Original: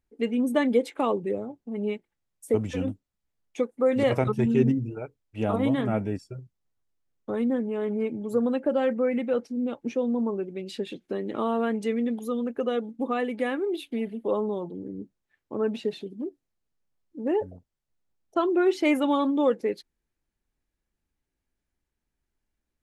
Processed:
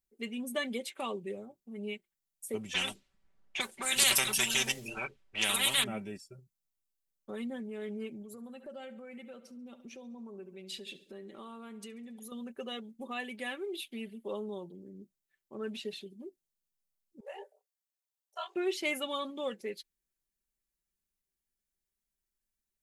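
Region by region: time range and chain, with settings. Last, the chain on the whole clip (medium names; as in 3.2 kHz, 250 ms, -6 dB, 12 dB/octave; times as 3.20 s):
2.74–5.84 s: level-controlled noise filter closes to 1.4 kHz, open at -21.5 dBFS + treble shelf 7.1 kHz +9 dB + spectrum-flattening compressor 4:1
8.22–12.32 s: feedback delay 69 ms, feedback 57%, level -17.5 dB + compression 2:1, threshold -37 dBFS
17.20–18.56 s: Chebyshev high-pass 450 Hz, order 8 + ring modulator 33 Hz + doubling 25 ms -2.5 dB
whole clip: pre-emphasis filter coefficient 0.8; comb 5.2 ms, depth 56%; dynamic bell 2.9 kHz, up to +7 dB, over -59 dBFS, Q 1.1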